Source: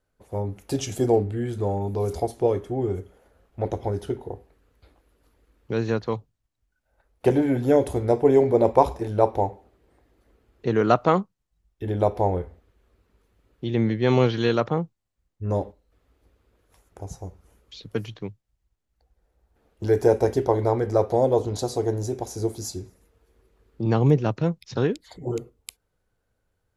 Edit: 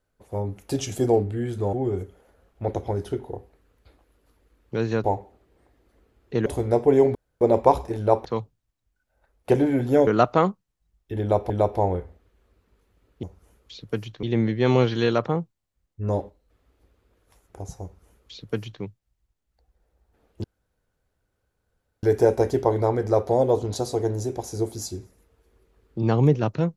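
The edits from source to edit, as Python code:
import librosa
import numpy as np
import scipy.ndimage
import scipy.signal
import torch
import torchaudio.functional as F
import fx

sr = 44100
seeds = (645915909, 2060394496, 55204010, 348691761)

y = fx.edit(x, sr, fx.cut(start_s=1.73, length_s=0.97),
    fx.swap(start_s=6.01, length_s=1.82, other_s=9.36, other_length_s=1.42),
    fx.insert_room_tone(at_s=8.52, length_s=0.26),
    fx.repeat(start_s=11.92, length_s=0.29, count=2),
    fx.duplicate(start_s=17.25, length_s=1.0, to_s=13.65),
    fx.insert_room_tone(at_s=19.86, length_s=1.59), tone=tone)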